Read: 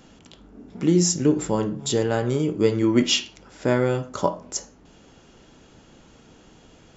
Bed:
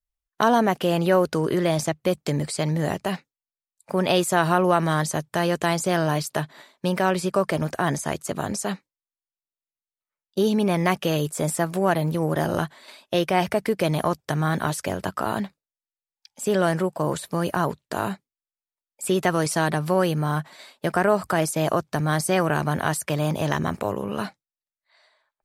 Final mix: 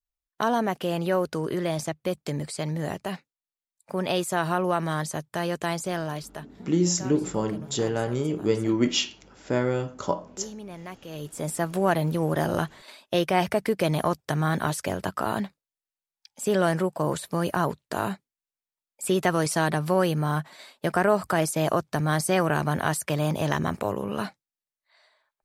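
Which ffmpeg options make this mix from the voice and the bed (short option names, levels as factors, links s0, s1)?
-filter_complex "[0:a]adelay=5850,volume=0.631[s0];[1:a]volume=3.76,afade=t=out:st=5.74:d=0.87:silence=0.223872,afade=t=in:st=11.07:d=0.71:silence=0.141254[s1];[s0][s1]amix=inputs=2:normalize=0"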